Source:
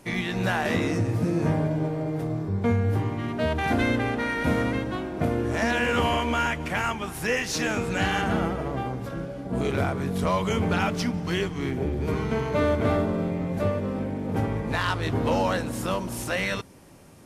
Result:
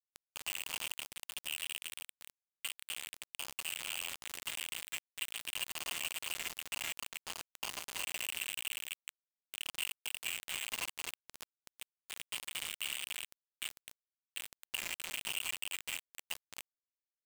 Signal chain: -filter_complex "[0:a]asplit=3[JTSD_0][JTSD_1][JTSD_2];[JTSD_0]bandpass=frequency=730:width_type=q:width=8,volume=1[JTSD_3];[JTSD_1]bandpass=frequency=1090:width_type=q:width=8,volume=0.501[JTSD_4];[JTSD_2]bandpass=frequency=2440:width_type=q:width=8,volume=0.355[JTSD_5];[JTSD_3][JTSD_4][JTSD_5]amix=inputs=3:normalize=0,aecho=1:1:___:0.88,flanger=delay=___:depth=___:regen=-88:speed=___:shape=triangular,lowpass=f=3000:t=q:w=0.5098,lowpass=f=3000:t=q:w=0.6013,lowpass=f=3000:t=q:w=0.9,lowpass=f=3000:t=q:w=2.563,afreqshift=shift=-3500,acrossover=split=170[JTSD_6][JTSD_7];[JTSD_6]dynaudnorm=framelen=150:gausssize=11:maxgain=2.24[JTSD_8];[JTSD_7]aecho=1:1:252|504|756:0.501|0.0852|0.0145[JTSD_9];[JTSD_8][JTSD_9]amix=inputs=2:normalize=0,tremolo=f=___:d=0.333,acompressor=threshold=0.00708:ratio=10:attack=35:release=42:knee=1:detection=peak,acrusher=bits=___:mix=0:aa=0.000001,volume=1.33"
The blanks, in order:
2.8, 1.7, 1.4, 0.78, 170, 5